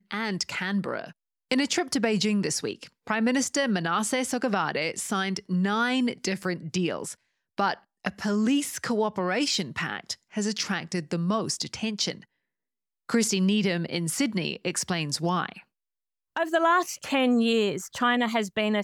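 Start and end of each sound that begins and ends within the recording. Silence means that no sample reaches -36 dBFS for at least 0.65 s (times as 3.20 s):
13.09–15.59 s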